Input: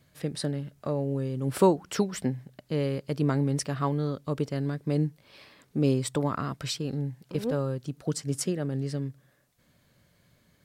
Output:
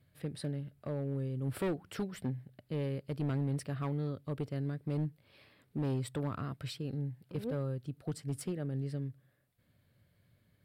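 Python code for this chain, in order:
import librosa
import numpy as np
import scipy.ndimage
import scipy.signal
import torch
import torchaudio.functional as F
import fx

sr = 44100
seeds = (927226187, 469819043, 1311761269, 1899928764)

y = np.clip(x, -10.0 ** (-22.0 / 20.0), 10.0 ** (-22.0 / 20.0))
y = fx.graphic_eq_15(y, sr, hz=(100, 1000, 6300), db=(9, -4, -12))
y = y * 10.0 ** (-8.0 / 20.0)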